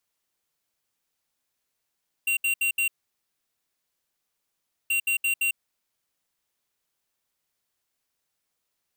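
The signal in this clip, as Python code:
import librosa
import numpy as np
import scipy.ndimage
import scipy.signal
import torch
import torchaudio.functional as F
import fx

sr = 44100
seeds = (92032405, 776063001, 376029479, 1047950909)

y = fx.beep_pattern(sr, wave='square', hz=2750.0, on_s=0.1, off_s=0.07, beeps=4, pause_s=2.02, groups=2, level_db=-24.0)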